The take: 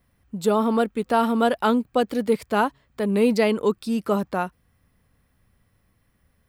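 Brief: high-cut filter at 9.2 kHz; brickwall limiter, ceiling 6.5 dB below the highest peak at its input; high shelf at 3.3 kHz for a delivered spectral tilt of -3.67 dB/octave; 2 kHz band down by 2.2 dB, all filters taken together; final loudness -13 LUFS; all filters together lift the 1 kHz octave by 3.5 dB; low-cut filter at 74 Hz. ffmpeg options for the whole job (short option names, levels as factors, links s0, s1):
-af "highpass=74,lowpass=9200,equalizer=f=1000:t=o:g=6,equalizer=f=2000:t=o:g=-5.5,highshelf=f=3300:g=-3,volume=3.35,alimiter=limit=0.841:level=0:latency=1"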